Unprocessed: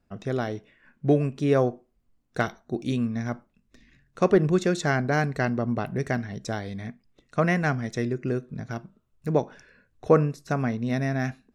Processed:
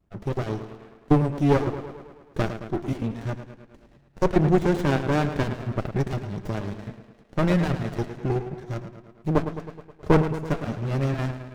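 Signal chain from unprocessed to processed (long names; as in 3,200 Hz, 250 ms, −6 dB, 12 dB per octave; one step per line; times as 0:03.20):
time-frequency cells dropped at random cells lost 25%
notch comb filter 250 Hz
tape delay 108 ms, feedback 66%, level −9.5 dB, low-pass 4,600 Hz
pitch vibrato 0.32 Hz 13 cents
windowed peak hold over 33 samples
level +4.5 dB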